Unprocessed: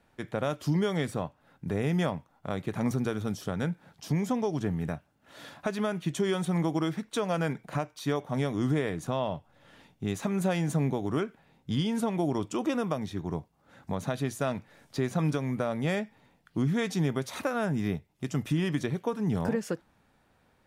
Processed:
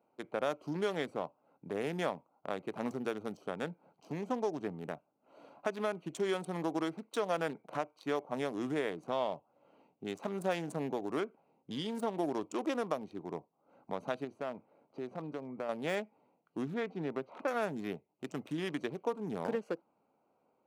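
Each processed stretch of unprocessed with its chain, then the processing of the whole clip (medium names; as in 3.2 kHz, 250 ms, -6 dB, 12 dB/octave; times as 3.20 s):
14.24–15.69 s: low-pass 2.1 kHz 6 dB/octave + compression 1.5:1, threshold -36 dBFS
16.74–17.48 s: high-pass 85 Hz + distance through air 340 m
whole clip: local Wiener filter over 25 samples; de-esser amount 85%; high-pass 350 Hz 12 dB/octave; trim -1.5 dB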